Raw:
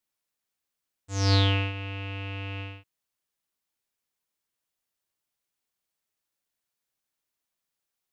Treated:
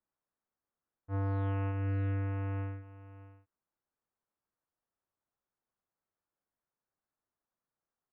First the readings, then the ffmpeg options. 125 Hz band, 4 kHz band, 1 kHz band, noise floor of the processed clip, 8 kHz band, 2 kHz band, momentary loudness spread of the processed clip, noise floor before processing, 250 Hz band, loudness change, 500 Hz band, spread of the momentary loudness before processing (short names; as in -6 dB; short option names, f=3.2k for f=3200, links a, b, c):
-5.0 dB, under -30 dB, -7.5 dB, under -85 dBFS, n/a, -13.5 dB, 18 LU, under -85 dBFS, -5.5 dB, -7.0 dB, -6.0 dB, 14 LU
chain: -af "lowpass=f=1.5k:w=0.5412,lowpass=f=1.5k:w=1.3066,aecho=1:1:623:0.168,alimiter=level_in=5.5dB:limit=-24dB:level=0:latency=1,volume=-5.5dB"